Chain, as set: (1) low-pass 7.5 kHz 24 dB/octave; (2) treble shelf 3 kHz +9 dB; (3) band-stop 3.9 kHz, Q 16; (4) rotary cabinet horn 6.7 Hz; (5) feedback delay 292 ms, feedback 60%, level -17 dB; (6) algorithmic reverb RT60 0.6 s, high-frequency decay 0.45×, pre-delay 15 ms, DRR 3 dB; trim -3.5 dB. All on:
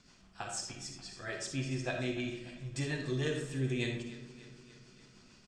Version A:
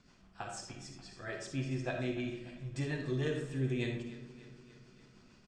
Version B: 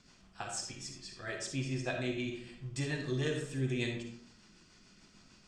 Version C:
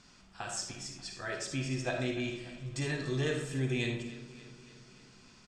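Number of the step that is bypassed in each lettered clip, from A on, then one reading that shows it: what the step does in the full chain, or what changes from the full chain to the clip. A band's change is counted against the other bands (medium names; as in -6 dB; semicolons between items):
2, 8 kHz band -7.0 dB; 5, momentary loudness spread change -7 LU; 4, loudness change +1.5 LU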